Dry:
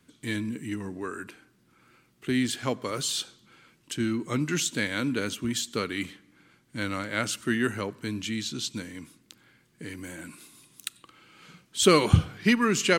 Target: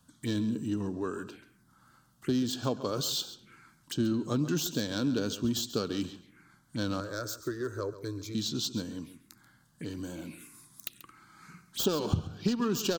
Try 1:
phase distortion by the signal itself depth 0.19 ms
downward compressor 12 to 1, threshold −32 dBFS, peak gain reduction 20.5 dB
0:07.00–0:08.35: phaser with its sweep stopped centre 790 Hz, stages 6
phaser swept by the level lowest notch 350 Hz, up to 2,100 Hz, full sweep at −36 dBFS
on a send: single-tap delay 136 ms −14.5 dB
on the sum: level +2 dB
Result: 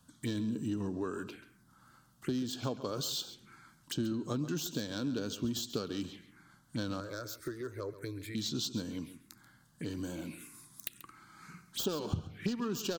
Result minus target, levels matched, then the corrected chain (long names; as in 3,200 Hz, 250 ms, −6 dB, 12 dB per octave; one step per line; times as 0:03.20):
downward compressor: peak gain reduction +6 dB
phase distortion by the signal itself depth 0.19 ms
downward compressor 12 to 1, threshold −25.5 dBFS, peak gain reduction 15 dB
0:07.00–0:08.35: phaser with its sweep stopped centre 790 Hz, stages 6
phaser swept by the level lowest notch 350 Hz, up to 2,100 Hz, full sweep at −36 dBFS
on a send: single-tap delay 136 ms −14.5 dB
on the sum: level +2 dB